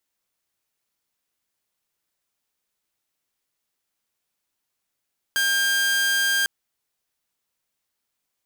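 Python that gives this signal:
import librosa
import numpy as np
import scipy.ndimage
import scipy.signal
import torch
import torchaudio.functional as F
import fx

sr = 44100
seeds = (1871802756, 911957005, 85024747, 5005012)

y = 10.0 ** (-16.5 / 20.0) * (2.0 * np.mod(1600.0 * (np.arange(round(1.1 * sr)) / sr), 1.0) - 1.0)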